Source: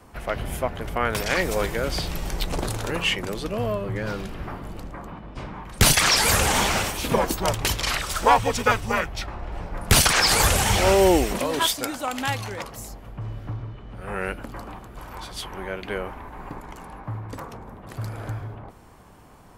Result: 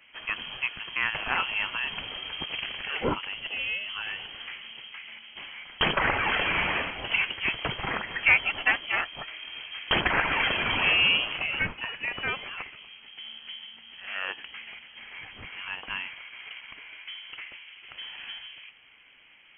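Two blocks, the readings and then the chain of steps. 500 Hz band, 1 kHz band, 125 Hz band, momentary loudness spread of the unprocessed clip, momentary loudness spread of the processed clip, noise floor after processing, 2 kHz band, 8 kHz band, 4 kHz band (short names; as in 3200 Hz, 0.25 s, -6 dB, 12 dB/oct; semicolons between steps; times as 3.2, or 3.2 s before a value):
-13.0 dB, -8.0 dB, -15.0 dB, 21 LU, 18 LU, -55 dBFS, +1.0 dB, under -40 dB, -3.5 dB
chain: low shelf 290 Hz -10.5 dB; inverted band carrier 3200 Hz; gain -2.5 dB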